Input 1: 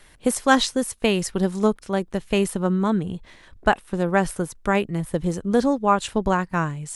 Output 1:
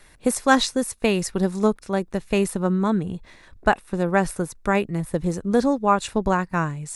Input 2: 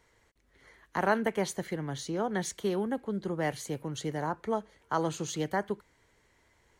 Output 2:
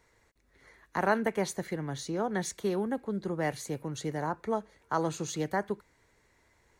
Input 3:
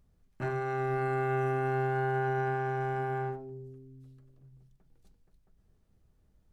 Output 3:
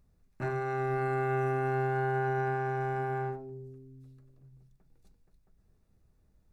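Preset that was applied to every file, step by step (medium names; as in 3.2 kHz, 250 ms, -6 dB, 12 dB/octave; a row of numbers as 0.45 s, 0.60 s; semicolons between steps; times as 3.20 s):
band-stop 3.1 kHz, Q 8.3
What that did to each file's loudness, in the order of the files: 0.0 LU, 0.0 LU, 0.0 LU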